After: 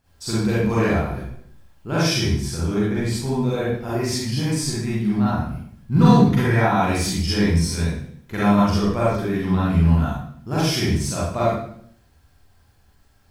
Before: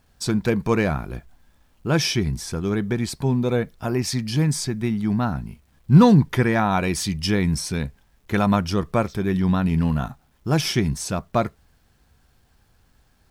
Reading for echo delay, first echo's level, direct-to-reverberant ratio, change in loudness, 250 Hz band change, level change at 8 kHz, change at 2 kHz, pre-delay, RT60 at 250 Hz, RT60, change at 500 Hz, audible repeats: no echo, no echo, -9.0 dB, +1.0 dB, +1.0 dB, +1.0 dB, +1.5 dB, 36 ms, 0.80 s, 0.60 s, +1.0 dB, no echo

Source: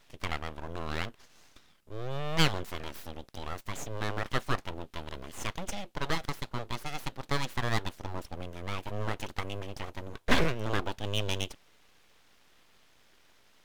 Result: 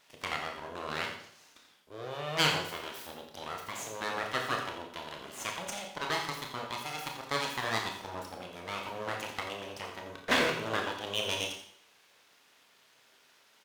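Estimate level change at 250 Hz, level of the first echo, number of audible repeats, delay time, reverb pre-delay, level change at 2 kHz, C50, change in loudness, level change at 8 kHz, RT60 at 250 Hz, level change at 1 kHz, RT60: -4.5 dB, -10.5 dB, 1, 86 ms, 26 ms, +2.0 dB, 5.0 dB, +0.5 dB, +2.5 dB, 0.60 s, +1.5 dB, 0.60 s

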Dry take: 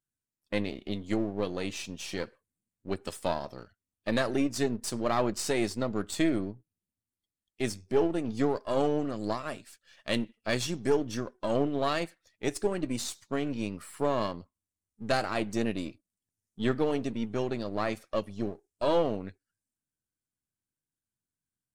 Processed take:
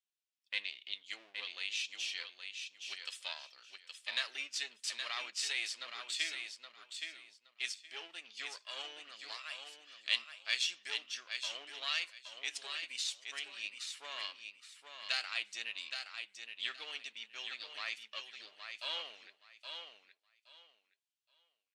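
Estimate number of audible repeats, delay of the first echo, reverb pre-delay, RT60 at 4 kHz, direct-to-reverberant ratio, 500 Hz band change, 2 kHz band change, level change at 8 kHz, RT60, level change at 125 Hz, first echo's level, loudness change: 3, 820 ms, no reverb, no reverb, no reverb, -28.0 dB, -0.5 dB, -3.5 dB, no reverb, under -40 dB, -6.5 dB, -8.0 dB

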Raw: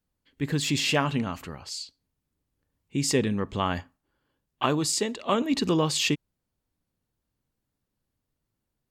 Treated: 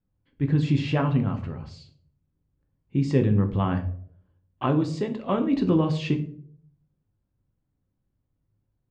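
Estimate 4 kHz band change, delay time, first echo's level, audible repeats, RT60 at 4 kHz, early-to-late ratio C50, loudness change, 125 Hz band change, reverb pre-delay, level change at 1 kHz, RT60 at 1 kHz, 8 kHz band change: -11.5 dB, no echo, no echo, no echo, 0.35 s, 12.5 dB, +2.0 dB, +8.0 dB, 3 ms, -2.0 dB, 0.50 s, under -20 dB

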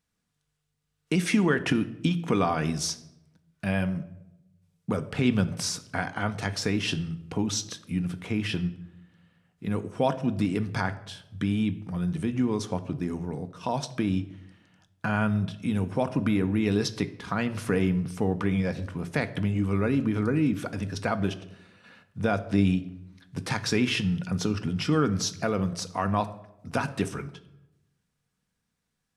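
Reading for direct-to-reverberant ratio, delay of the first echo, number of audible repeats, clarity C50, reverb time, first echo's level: 8.5 dB, no echo, no echo, 15.5 dB, 0.90 s, no echo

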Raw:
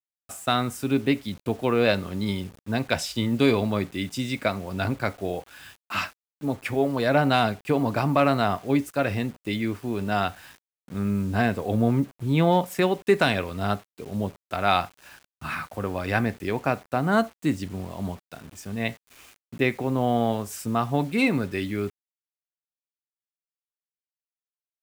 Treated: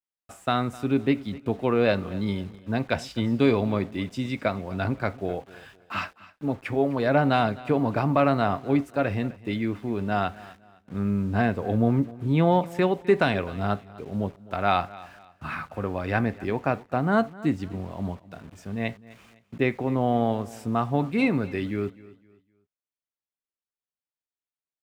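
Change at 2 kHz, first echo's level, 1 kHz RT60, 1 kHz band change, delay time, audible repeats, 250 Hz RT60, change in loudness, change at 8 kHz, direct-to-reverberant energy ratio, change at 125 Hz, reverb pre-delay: -2.5 dB, -20.0 dB, no reverb, -0.5 dB, 256 ms, 2, no reverb, -0.5 dB, under -10 dB, no reverb, 0.0 dB, no reverb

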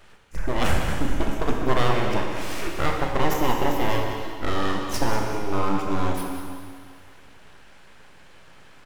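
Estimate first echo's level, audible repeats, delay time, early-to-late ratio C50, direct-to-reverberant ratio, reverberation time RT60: -11.0 dB, 1, 191 ms, 1.5 dB, 0.0 dB, 2.1 s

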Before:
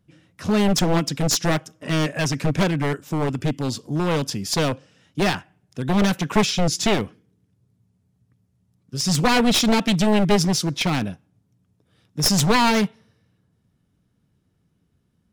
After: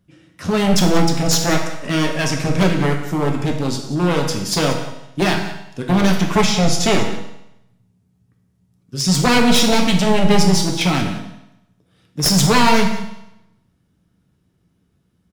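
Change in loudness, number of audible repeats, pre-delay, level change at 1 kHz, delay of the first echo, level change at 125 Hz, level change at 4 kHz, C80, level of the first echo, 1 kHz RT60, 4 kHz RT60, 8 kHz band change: +4.0 dB, 1, 6 ms, +4.5 dB, 183 ms, +4.0 dB, +4.0 dB, 8.0 dB, -15.0 dB, 0.85 s, 0.80 s, +4.0 dB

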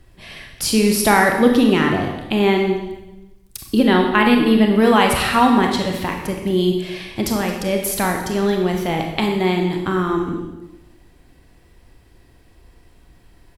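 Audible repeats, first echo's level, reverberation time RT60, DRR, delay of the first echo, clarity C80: 1, -17.5 dB, 1.0 s, 2.0 dB, 222 ms, 6.5 dB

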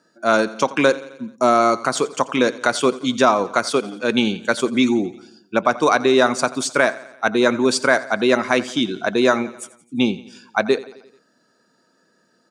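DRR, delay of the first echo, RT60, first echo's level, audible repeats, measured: no reverb, 87 ms, no reverb, -18.5 dB, 4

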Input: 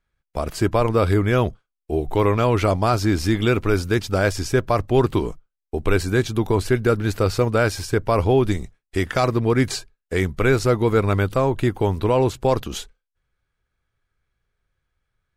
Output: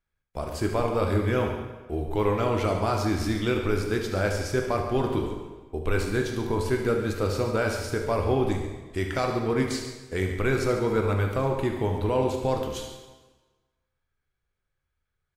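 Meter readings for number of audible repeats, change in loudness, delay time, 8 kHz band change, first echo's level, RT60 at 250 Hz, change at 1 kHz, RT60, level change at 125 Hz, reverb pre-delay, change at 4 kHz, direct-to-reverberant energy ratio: 2, -6.0 dB, 73 ms, -6.0 dB, -10.5 dB, 1.3 s, -6.0 dB, 1.3 s, -7.0 dB, 11 ms, -6.0 dB, 1.5 dB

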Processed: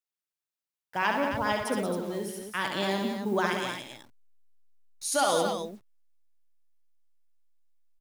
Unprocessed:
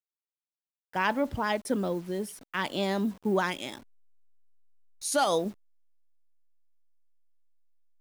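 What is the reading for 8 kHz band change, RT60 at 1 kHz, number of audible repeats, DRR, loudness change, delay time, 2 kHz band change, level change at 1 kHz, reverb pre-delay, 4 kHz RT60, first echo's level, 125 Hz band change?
+2.5 dB, no reverb, 4, no reverb, +0.5 dB, 67 ms, +2.0 dB, +1.5 dB, no reverb, no reverb, -4.5 dB, -1.0 dB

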